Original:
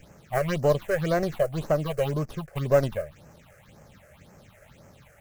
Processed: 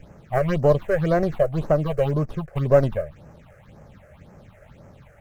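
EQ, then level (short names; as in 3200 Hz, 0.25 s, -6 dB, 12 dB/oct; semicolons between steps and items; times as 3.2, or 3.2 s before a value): tilt -1.5 dB/oct; low shelf 430 Hz -3.5 dB; high shelf 2800 Hz -8.5 dB; +4.5 dB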